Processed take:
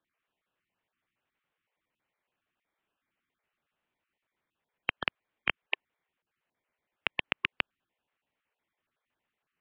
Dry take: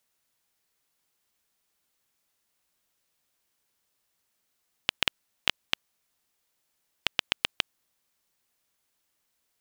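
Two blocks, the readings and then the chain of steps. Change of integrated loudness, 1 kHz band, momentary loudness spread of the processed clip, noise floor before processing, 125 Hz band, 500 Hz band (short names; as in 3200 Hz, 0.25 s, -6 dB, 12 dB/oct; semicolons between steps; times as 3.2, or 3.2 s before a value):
-3.0 dB, 0.0 dB, 5 LU, -77 dBFS, -2.0 dB, -0.5 dB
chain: random spectral dropouts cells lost 24%; mistuned SSB -280 Hz 360–3200 Hz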